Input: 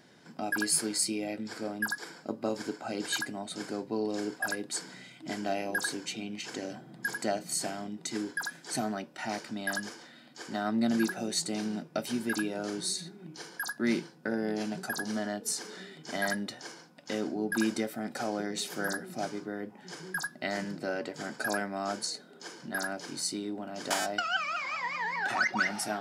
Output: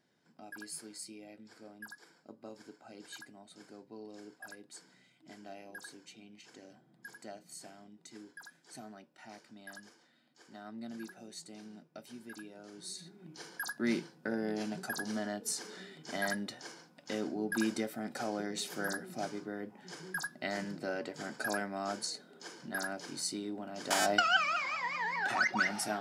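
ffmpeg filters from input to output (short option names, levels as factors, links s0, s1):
-af "volume=1.68,afade=t=in:st=12.72:d=0.77:silence=0.223872,afade=t=in:st=23.88:d=0.23:silence=0.398107,afade=t=out:st=24.11:d=0.65:silence=0.473151"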